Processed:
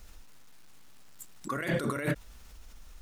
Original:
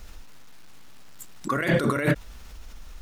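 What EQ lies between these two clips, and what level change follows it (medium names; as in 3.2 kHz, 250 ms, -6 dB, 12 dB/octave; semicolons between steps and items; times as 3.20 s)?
peaking EQ 8.7 kHz +3 dB 1 oct; treble shelf 11 kHz +5 dB; -8.0 dB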